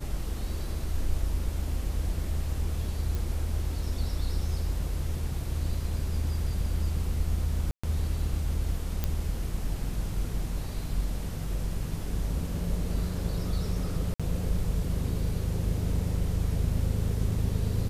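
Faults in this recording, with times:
0:03.15: click
0:07.71–0:07.83: drop-out 125 ms
0:09.04: click −14 dBFS
0:14.14–0:14.20: drop-out 56 ms

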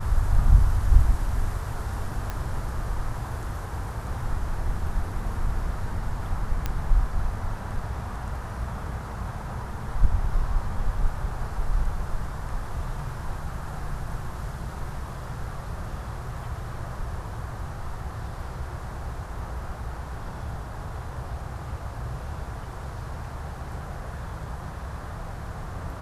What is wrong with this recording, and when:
0:02.30: click −17 dBFS
0:06.66: click −13 dBFS

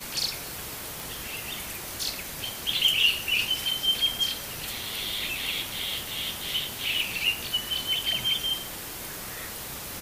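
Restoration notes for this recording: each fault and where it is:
0:01.00: click

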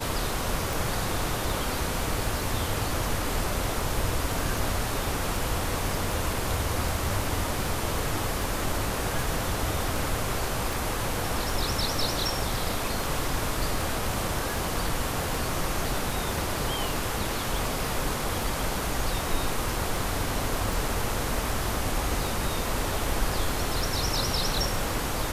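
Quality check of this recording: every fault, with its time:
scratch tick 78 rpm

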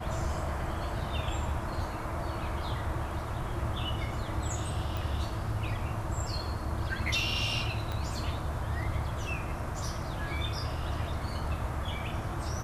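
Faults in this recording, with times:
0:04.97: click
0:07.92: click −22 dBFS

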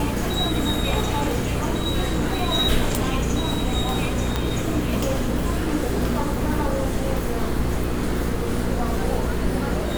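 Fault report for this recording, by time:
mains hum 60 Hz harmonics 8 −27 dBFS
0:04.36: click −8 dBFS

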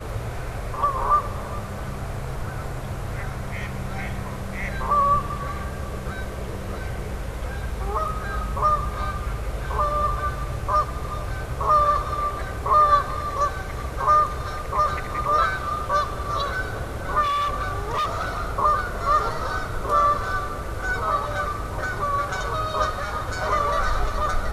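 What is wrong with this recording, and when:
0:17.22–0:18.54: clipping −21 dBFS

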